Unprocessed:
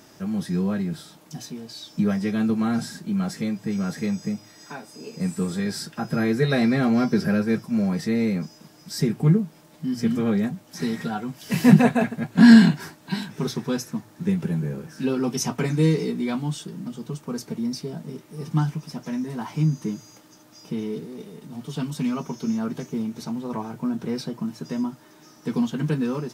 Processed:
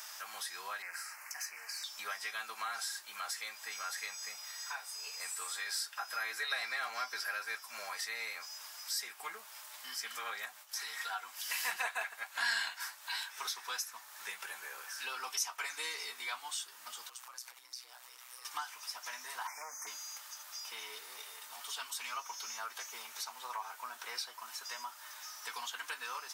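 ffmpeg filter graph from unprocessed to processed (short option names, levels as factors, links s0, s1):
-filter_complex "[0:a]asettb=1/sr,asplit=3[s0][s1][s2];[s0]atrim=end=0.824[s3];[s1]atrim=start=0.82:end=1.84,asetpts=PTS-STARTPTS,afade=t=in:d=0.004:c=qsin,afade=t=out:st=1.016:d=0.004:c=qsin,equalizer=f=2000:t=o:w=1.3:g=12.5,aeval=exprs='(tanh(20*val(0)+0.55)-tanh(0.55))/20':c=same,asuperstop=centerf=3500:order=4:qfactor=1.4[s4];[s2]atrim=start=1.836[s5];[s3][s4]acrossfade=d=0.004:c1=hsin:c2=qsin[s6];[s6][s5]acrossfade=d=0.004:c1=qsin:c2=hsin,asettb=1/sr,asplit=3[s7][s8][s9];[s7]atrim=end=10.454[s10];[s8]atrim=start=10.45:end=11,asetpts=PTS-STARTPTS,afade=t=in:d=0.004:c=qsin,afade=t=out:st=0.546:d=0.004:c=qsin,agate=range=0.0224:threshold=0.00501:ratio=3:release=100:detection=peak,acompressor=threshold=0.0398:ratio=2:attack=3.2:release=140:knee=1:detection=peak[s11];[s9]atrim=start=10.996[s12];[s10][s11]acrossfade=d=0.004:c1=hsin:c2=qsin[s13];[s13][s12]acrossfade=d=0.004:c1=qsin:c2=hsin,asettb=1/sr,asplit=3[s14][s15][s16];[s14]atrim=end=17.094[s17];[s15]atrim=start=17.09:end=18.45,asetpts=PTS-STARTPTS,afade=t=in:d=0.004:c=qsin,afade=t=out:st=1.356:d=0.004:c=qsin,highpass=f=630:p=1,acompressor=threshold=0.00631:ratio=5:attack=3.2:release=140:knee=1:detection=peak,aeval=exprs='val(0)*sin(2*PI*62*n/s)':c=same[s18];[s16]atrim=start=18.446[s19];[s17][s18]acrossfade=d=0.004:c1=hsin:c2=qsin[s20];[s20][s19]acrossfade=d=0.004:c1=qsin:c2=hsin,asettb=1/sr,asplit=3[s21][s22][s23];[s21]atrim=end=19.474[s24];[s22]atrim=start=19.47:end=19.87,asetpts=PTS-STARTPTS,afade=t=in:d=0.004:c=qsin,afade=t=out:st=0.396:d=0.004:c=qsin,asoftclip=type=hard:threshold=0.0794,asuperstop=centerf=3500:order=12:qfactor=1.2[s25];[s23]atrim=start=19.866[s26];[s24][s25]acrossfade=d=0.004:c1=hsin:c2=qsin[s27];[s27][s26]acrossfade=d=0.004:c1=qsin:c2=hsin,highpass=f=980:w=0.5412,highpass=f=980:w=1.3066,highshelf=f=8500:g=6.5,acompressor=threshold=0.00316:ratio=2,volume=2"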